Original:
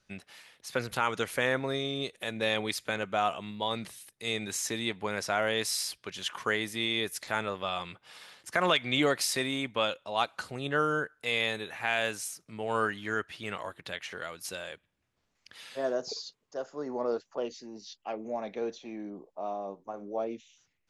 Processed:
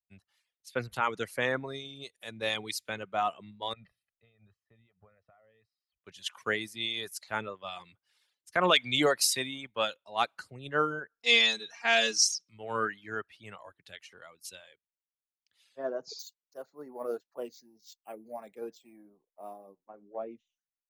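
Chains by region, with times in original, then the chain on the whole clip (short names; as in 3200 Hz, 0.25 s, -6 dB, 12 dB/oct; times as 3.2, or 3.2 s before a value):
3.73–6.05 comb 1.6 ms, depth 61% + compressor 10:1, threshold -38 dBFS + air absorption 450 m
11.11–12.49 synth low-pass 5500 Hz, resonance Q 5.9 + comb 4.3 ms, depth 96%
16.19–19.82 bell 7900 Hz +7.5 dB 0.88 oct + careless resampling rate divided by 4×, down none, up hold
whole clip: reverb removal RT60 0.85 s; three-band expander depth 100%; gain -4 dB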